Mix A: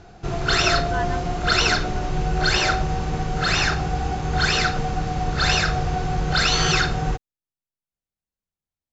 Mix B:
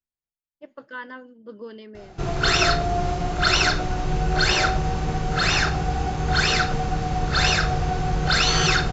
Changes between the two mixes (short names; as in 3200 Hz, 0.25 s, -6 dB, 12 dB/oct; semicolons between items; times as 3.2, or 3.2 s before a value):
speech -4.0 dB; background: entry +1.95 s